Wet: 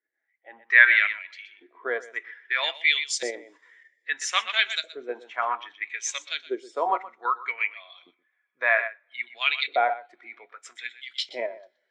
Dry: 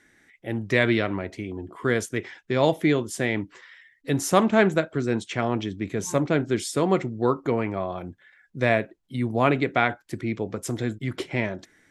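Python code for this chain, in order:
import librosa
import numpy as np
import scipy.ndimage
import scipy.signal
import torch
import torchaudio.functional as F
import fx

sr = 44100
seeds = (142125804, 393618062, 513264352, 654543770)

p1 = fx.weighting(x, sr, curve='ITU-R 468')
p2 = fx.filter_lfo_bandpass(p1, sr, shape='saw_up', hz=0.62, low_hz=450.0, high_hz=4700.0, q=1.9)
p3 = scipy.signal.sosfilt(scipy.signal.butter(2, 110.0, 'highpass', fs=sr, output='sos'), p2)
p4 = p3 + 10.0 ** (-9.5 / 20.0) * np.pad(p3, (int(123 * sr / 1000.0), 0))[:len(p3)]
p5 = fx.rev_double_slope(p4, sr, seeds[0], early_s=0.22, late_s=2.9, knee_db=-18, drr_db=16.0)
p6 = fx.level_steps(p5, sr, step_db=18)
p7 = p5 + (p6 * librosa.db_to_amplitude(-1.0))
p8 = fx.spectral_expand(p7, sr, expansion=1.5)
y = p8 * librosa.db_to_amplitude(6.0)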